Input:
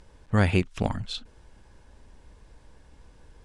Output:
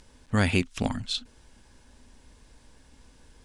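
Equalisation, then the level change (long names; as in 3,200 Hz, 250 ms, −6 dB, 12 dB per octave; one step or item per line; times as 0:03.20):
parametric band 250 Hz +10.5 dB 0.27 octaves
high-shelf EQ 2,300 Hz +11 dB
−3.5 dB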